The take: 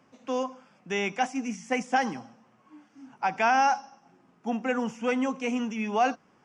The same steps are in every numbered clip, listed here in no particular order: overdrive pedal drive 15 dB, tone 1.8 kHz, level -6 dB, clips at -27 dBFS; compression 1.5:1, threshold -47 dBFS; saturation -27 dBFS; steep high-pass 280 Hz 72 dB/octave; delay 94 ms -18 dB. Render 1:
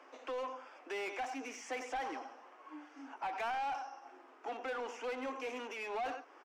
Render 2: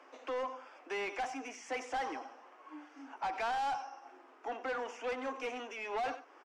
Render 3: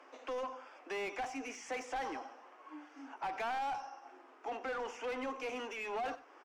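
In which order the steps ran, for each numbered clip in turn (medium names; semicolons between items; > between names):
delay > overdrive pedal > steep high-pass > saturation > compression; saturation > delay > compression > steep high-pass > overdrive pedal; steep high-pass > saturation > overdrive pedal > compression > delay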